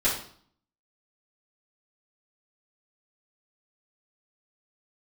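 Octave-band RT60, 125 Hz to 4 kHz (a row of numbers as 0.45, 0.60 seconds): 0.70, 0.70, 0.55, 0.55, 0.50, 0.50 seconds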